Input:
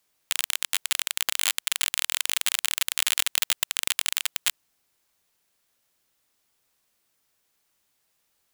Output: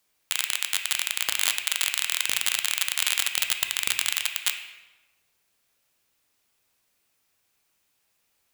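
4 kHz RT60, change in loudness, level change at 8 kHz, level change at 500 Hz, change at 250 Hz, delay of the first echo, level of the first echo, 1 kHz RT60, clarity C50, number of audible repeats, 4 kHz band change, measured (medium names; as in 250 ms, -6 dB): 0.85 s, +0.5 dB, 0.0 dB, +0.5 dB, +0.5 dB, no echo, no echo, 1.1 s, 6.5 dB, no echo, +1.0 dB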